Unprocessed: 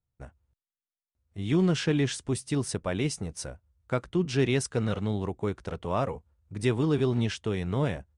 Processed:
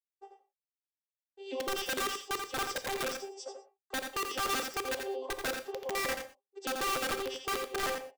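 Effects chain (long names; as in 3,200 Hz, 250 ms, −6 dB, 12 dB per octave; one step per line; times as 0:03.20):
vocoder with an arpeggio as carrier bare fifth, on C4, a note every 151 ms
high-pass filter 550 Hz 24 dB per octave
downward expander −60 dBFS
flat-topped bell 1,700 Hz −13.5 dB 1.2 octaves
comb filter 7.3 ms, depth 68%
0:02.12–0:04.48: dynamic equaliser 1,000 Hz, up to +4 dB, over −50 dBFS, Q 0.83
brickwall limiter −29.5 dBFS, peak gain reduction 8 dB
wrap-around overflow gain 32.5 dB
single-tap delay 85 ms −6.5 dB
reverb whose tail is shaped and stops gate 140 ms flat, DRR 11 dB
level +3.5 dB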